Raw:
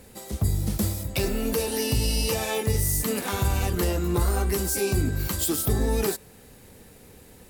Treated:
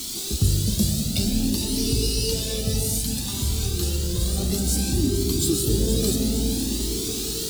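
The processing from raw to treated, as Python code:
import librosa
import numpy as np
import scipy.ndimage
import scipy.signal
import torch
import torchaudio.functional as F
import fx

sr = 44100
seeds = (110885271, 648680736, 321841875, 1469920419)

y = fx.dmg_noise_colour(x, sr, seeds[0], colour='white', level_db=-36.0)
y = fx.graphic_eq(y, sr, hz=(250, 500, 1000, 2000, 4000, 8000), db=(3, -10, -10, -10, 11, 6))
y = fx.echo_feedback(y, sr, ms=464, feedback_pct=55, wet_db=-11.0)
y = fx.rev_freeverb(y, sr, rt60_s=2.9, hf_ratio=0.3, predelay_ms=90, drr_db=3.5)
y = fx.rider(y, sr, range_db=10, speed_s=2.0)
y = fx.peak_eq(y, sr, hz=340.0, db=fx.steps((0.0, 11.0), (2.98, 4.5), (4.38, 13.0)), octaves=2.1)
y = fx.comb_cascade(y, sr, direction='rising', hz=0.58)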